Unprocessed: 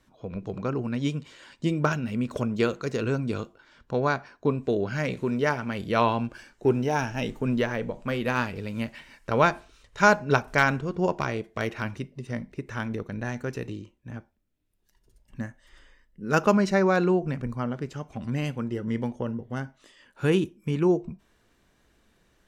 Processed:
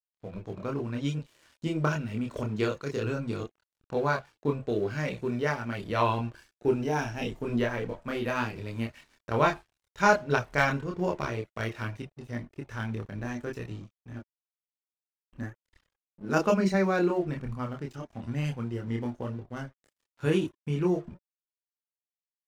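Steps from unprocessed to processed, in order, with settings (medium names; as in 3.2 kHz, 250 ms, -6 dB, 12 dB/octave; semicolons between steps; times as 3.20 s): crossover distortion -48.5 dBFS; chorus voices 6, 0.53 Hz, delay 27 ms, depth 1.8 ms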